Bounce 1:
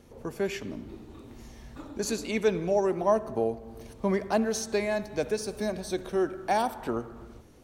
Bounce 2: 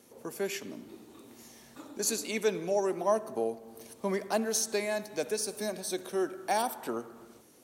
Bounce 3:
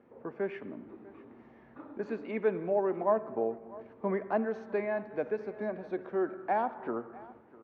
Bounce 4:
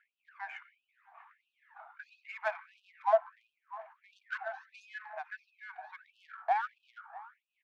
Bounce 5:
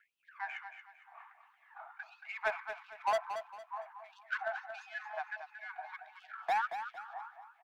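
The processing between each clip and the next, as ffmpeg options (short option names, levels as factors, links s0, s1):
-af "highpass=210,equalizer=f=12000:t=o:w=1.7:g=13,volume=0.668"
-af "lowpass=f=1900:w=0.5412,lowpass=f=1900:w=1.3066,aecho=1:1:649:0.0944"
-af "aphaser=in_gain=1:out_gain=1:delay=1.4:decay=0.55:speed=0.79:type=sinusoidal,adynamicsmooth=sensitivity=4:basefreq=2900,afftfilt=real='re*gte(b*sr/1024,630*pow(2500/630,0.5+0.5*sin(2*PI*1.5*pts/sr)))':imag='im*gte(b*sr/1024,630*pow(2500/630,0.5+0.5*sin(2*PI*1.5*pts/sr)))':win_size=1024:overlap=0.75,volume=1.41"
-filter_complex "[0:a]acrossover=split=1100|1400|1800[s0][s1][s2][s3];[s0]volume=50.1,asoftclip=hard,volume=0.02[s4];[s4][s1][s2][s3]amix=inputs=4:normalize=0,aecho=1:1:228|456|684|912:0.355|0.114|0.0363|0.0116,volume=1.26"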